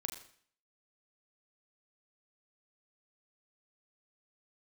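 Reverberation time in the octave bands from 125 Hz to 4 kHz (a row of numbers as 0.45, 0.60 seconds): 0.60, 0.55, 0.55, 0.55, 0.55, 0.55 seconds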